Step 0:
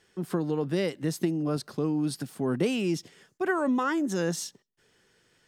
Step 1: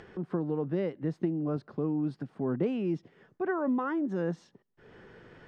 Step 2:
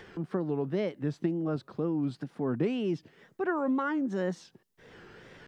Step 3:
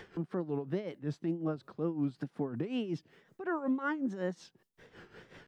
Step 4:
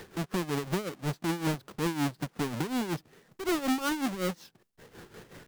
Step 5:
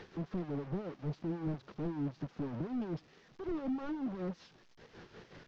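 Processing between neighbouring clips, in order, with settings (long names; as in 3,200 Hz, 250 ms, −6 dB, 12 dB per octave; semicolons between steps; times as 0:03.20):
Bessel low-pass filter 1,200 Hz, order 2; upward compression, threshold −33 dBFS; level −2.5 dB
high-shelf EQ 2,600 Hz +11 dB; tape wow and flutter 140 cents
brickwall limiter −23.5 dBFS, peak gain reduction 6 dB; amplitude tremolo 5.4 Hz, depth 75%
each half-wave held at its own peak
linear delta modulator 32 kbit/s, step −52.5 dBFS; level −4.5 dB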